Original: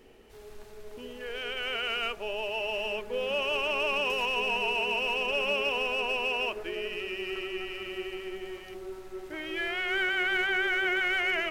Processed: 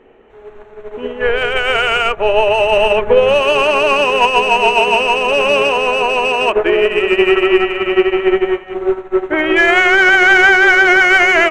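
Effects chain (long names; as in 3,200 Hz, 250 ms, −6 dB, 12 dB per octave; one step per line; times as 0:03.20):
adaptive Wiener filter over 9 samples
mid-hump overdrive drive 12 dB, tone 1,300 Hz, clips at −17.5 dBFS
0:01.21–0:03.41: low shelf with overshoot 170 Hz +8 dB, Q 1.5
boost into a limiter +28 dB
expander for the loud parts 2.5 to 1, over −19 dBFS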